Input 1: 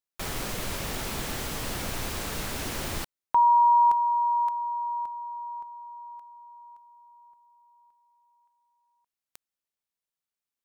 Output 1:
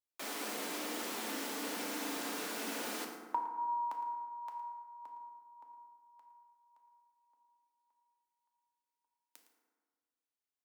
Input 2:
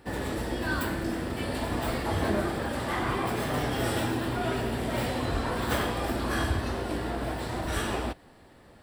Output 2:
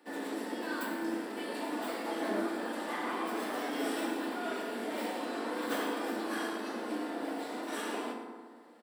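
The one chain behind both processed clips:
Butterworth high-pass 200 Hz 72 dB per octave
on a send: single-tap delay 111 ms −14.5 dB
on the sum: feedback delay network reverb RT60 1.7 s, low-frequency decay 1.05×, high-frequency decay 0.45×, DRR 1.5 dB
level −8 dB

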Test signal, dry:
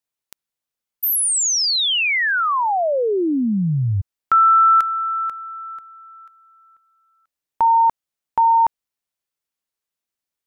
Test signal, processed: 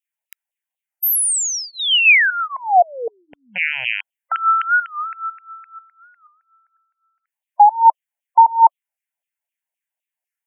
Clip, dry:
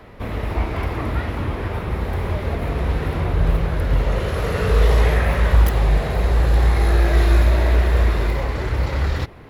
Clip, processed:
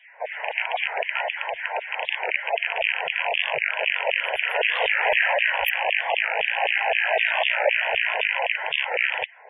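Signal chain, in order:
loose part that buzzes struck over −19 dBFS, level −15 dBFS
auto-filter high-pass saw down 3.9 Hz 560–3,100 Hz
phaser with its sweep stopped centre 1,200 Hz, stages 6
dynamic equaliser 3,000 Hz, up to +6 dB, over −47 dBFS, Q 7.2
in parallel at −7 dB: dead-zone distortion −39.5 dBFS
on the sum: gate on every frequency bin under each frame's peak −20 dB strong
wow of a warped record 45 rpm, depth 160 cents

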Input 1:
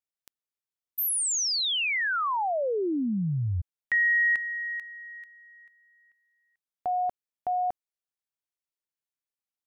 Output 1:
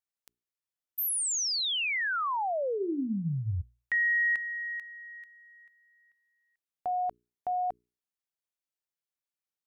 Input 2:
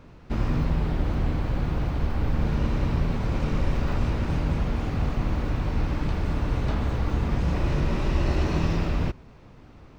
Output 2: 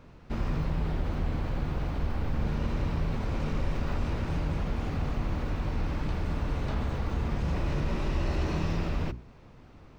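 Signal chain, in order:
mains-hum notches 60/120/180/240/300/360/420 Hz
in parallel at −3 dB: brickwall limiter −21 dBFS
on the sum: level −7.5 dB

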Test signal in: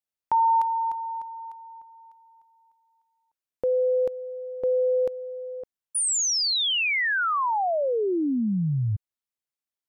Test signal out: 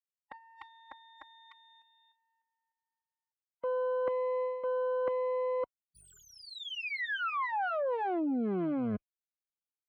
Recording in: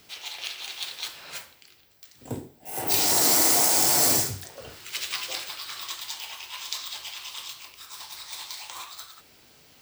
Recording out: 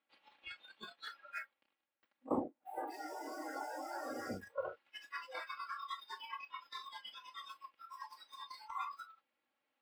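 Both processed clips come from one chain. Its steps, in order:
lower of the sound and its delayed copy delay 3.6 ms
leveller curve on the samples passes 1
meter weighting curve A
reversed playback
downward compressor 12 to 1, threshold −36 dBFS
reversed playback
noise reduction from a noise print of the clip's start 26 dB
high-frequency loss of the air 500 metres
level +8 dB

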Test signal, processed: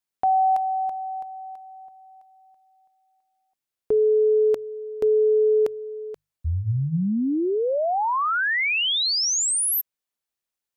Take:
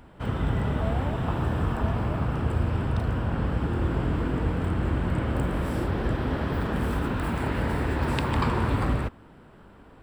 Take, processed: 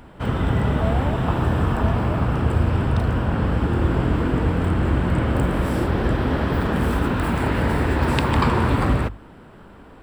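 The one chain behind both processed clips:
mains-hum notches 50/100/150 Hz
level +6.5 dB

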